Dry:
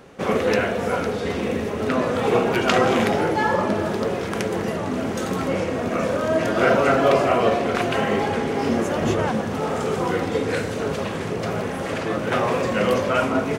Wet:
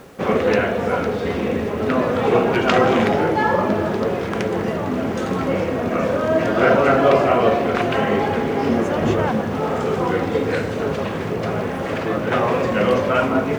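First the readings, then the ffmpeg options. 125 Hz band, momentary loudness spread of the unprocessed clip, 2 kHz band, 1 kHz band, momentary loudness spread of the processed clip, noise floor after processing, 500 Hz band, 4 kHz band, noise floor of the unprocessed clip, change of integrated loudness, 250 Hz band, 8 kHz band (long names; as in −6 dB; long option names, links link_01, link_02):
+3.0 dB, 8 LU, +1.5 dB, +2.5 dB, 7 LU, −25 dBFS, +3.0 dB, −0.5 dB, −28 dBFS, +2.5 dB, +3.0 dB, can't be measured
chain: -af "aemphasis=mode=reproduction:type=50fm,areverse,acompressor=mode=upward:threshold=-27dB:ratio=2.5,areverse,acrusher=bits=8:mix=0:aa=0.000001,volume=2.5dB"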